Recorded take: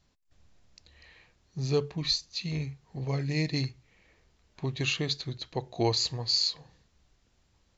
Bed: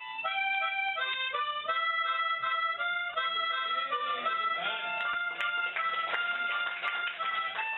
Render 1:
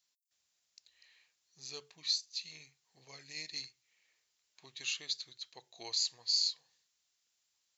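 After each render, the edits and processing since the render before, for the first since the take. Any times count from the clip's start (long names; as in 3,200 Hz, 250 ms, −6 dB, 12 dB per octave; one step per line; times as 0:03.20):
first difference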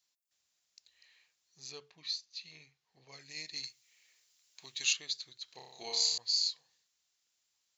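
0:01.72–0:03.12: high-frequency loss of the air 130 metres
0:03.63–0:04.93: high-shelf EQ 2,500 Hz +10.5 dB
0:05.45–0:06.18: flutter between parallel walls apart 5.2 metres, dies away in 0.86 s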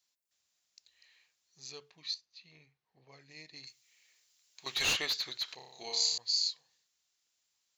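0:02.14–0:03.67: low-pass filter 1,400 Hz 6 dB per octave
0:04.66–0:05.55: mid-hump overdrive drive 28 dB, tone 1,800 Hz, clips at −16 dBFS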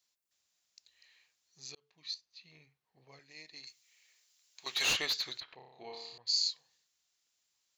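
0:01.75–0:02.47: fade in equal-power
0:03.19–0:04.90: high-pass filter 330 Hz 6 dB per octave
0:05.40–0:06.27: high-frequency loss of the air 500 metres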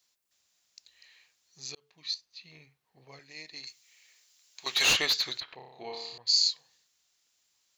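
level +6.5 dB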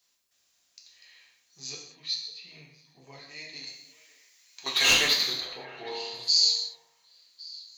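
echo through a band-pass that steps 277 ms, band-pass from 210 Hz, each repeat 1.4 octaves, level −11.5 dB
reverb whose tail is shaped and stops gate 260 ms falling, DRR −1 dB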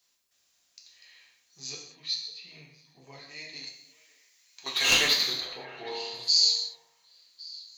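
0:03.69–0:04.92: clip gain −3 dB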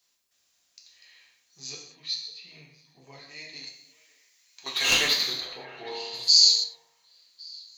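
0:06.13–0:06.64: high-shelf EQ 3,600 Hz +8 dB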